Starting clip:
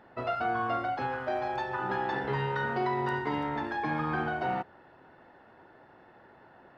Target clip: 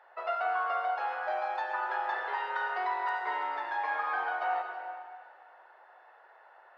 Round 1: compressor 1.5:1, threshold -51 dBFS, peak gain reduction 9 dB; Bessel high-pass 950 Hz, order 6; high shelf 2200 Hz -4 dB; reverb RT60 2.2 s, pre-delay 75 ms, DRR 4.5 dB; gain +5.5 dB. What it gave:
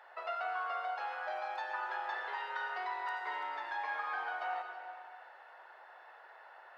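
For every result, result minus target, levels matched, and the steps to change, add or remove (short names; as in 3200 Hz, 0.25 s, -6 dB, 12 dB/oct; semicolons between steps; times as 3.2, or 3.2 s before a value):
compressor: peak gain reduction +9 dB; 4000 Hz band +4.5 dB
remove: compressor 1.5:1, threshold -51 dBFS, peak gain reduction 9 dB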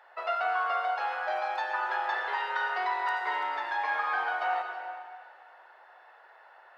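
4000 Hz band +4.5 dB
change: high shelf 2200 Hz -13.5 dB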